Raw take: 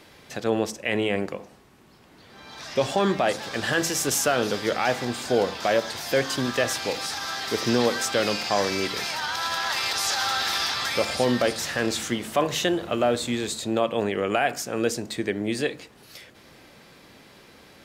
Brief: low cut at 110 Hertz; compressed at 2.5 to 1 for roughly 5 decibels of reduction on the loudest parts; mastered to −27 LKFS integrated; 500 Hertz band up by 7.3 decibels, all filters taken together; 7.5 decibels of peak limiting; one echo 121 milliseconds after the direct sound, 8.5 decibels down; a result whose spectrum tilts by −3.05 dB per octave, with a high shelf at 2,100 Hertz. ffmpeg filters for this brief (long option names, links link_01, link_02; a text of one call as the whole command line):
ffmpeg -i in.wav -af "highpass=110,equalizer=frequency=500:width_type=o:gain=8,highshelf=frequency=2100:gain=8.5,acompressor=threshold=-18dB:ratio=2.5,alimiter=limit=-14dB:level=0:latency=1,aecho=1:1:121:0.376,volume=-4dB" out.wav